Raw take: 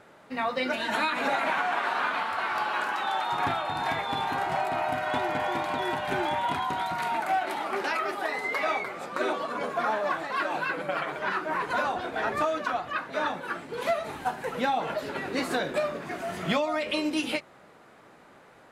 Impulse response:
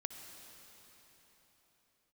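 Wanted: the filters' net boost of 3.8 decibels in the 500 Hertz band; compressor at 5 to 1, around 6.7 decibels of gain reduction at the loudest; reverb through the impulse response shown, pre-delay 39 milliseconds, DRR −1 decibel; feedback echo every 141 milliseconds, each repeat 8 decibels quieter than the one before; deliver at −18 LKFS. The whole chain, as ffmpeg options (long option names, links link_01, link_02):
-filter_complex "[0:a]equalizer=frequency=500:width_type=o:gain=5,acompressor=threshold=-27dB:ratio=5,aecho=1:1:141|282|423|564|705:0.398|0.159|0.0637|0.0255|0.0102,asplit=2[link_01][link_02];[1:a]atrim=start_sample=2205,adelay=39[link_03];[link_02][link_03]afir=irnorm=-1:irlink=0,volume=2.5dB[link_04];[link_01][link_04]amix=inputs=2:normalize=0,volume=9dB"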